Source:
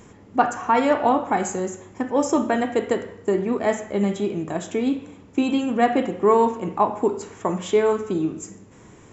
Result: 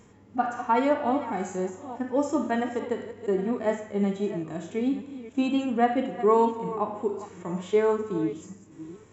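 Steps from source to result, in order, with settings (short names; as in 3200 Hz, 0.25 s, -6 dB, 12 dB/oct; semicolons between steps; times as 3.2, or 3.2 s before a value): reverse delay 0.502 s, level -13.5 dB; harmonic-percussive split percussive -14 dB; gain -3.5 dB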